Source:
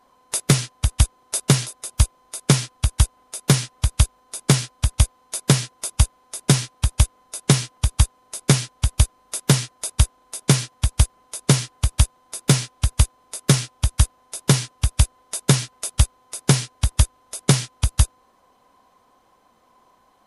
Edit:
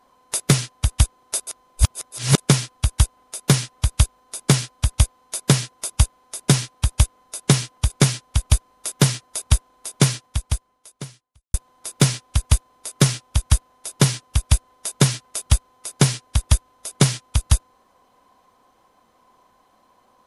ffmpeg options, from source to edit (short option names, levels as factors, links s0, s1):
-filter_complex "[0:a]asplit=5[s0][s1][s2][s3][s4];[s0]atrim=end=1.472[s5];[s1]atrim=start=1.468:end=2.382,asetpts=PTS-STARTPTS,areverse[s6];[s2]atrim=start=2.378:end=7.902[s7];[s3]atrim=start=8.378:end=12.02,asetpts=PTS-STARTPTS,afade=t=out:st=2.182:d=1.46:c=qua[s8];[s4]atrim=start=12.02,asetpts=PTS-STARTPTS,afade=t=in:d=0.004:c=hsin[s9];[s5][s6]acrossfade=d=0.004:c1=hsin:c2=hsin[s10];[s10][s7]acrossfade=d=0.004:c1=hsin:c2=hsin[s11];[s8][s9]concat=n=2:v=0:a=1[s12];[s11][s12]acrossfade=d=0.004:c1=hsin:c2=hsin"